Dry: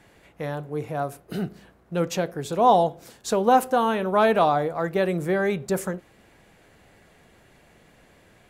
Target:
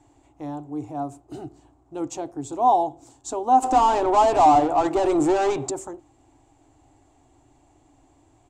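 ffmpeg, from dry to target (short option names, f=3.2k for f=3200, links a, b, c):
-filter_complex "[0:a]asplit=3[a][b][c];[a]afade=t=out:st=3.62:d=0.02[d];[b]asplit=2[e][f];[f]highpass=f=720:p=1,volume=27dB,asoftclip=type=tanh:threshold=-7.5dB[g];[e][g]amix=inputs=2:normalize=0,lowpass=f=3.3k:p=1,volume=-6dB,afade=t=in:st=3.62:d=0.02,afade=t=out:st=5.69:d=0.02[h];[c]afade=t=in:st=5.69:d=0.02[i];[d][h][i]amix=inputs=3:normalize=0,firequalizer=gain_entry='entry(130,0);entry(190,-29);entry(280,8);entry(480,-14);entry(780,3);entry(1600,-18);entry(2800,-12);entry(4900,-10);entry(7500,3);entry(11000,-21)':delay=0.05:min_phase=1"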